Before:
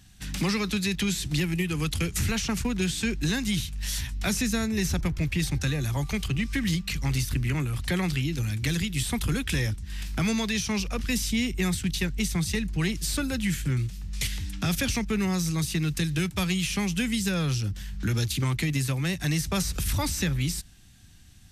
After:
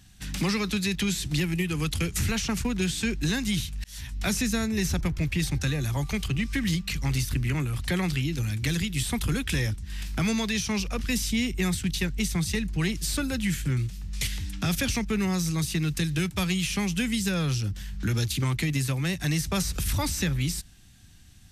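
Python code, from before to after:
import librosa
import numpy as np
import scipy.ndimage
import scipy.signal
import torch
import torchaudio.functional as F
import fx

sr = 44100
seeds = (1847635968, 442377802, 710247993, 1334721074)

y = fx.edit(x, sr, fx.fade_in_span(start_s=3.84, length_s=0.36), tone=tone)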